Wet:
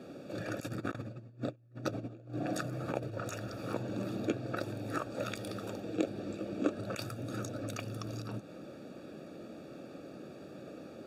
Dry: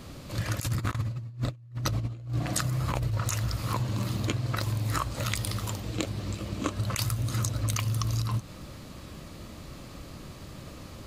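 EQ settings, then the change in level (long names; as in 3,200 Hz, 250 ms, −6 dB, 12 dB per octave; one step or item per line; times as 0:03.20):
moving average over 43 samples
high-pass filter 300 Hz 12 dB per octave
spectral tilt +2 dB per octave
+9.0 dB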